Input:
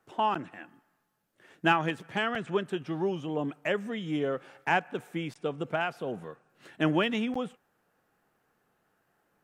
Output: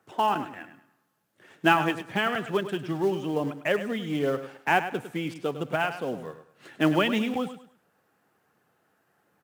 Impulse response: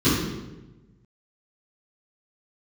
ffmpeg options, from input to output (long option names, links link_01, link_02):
-filter_complex "[0:a]highpass=frequency=78:width=0.5412,highpass=frequency=78:width=1.3066,aphaser=in_gain=1:out_gain=1:delay=4.2:decay=0.23:speed=1.4:type=triangular,asplit=2[link_01][link_02];[link_02]acrusher=bits=3:mode=log:mix=0:aa=0.000001,volume=-8dB[link_03];[link_01][link_03]amix=inputs=2:normalize=0,aecho=1:1:103|206|309:0.266|0.0745|0.0209"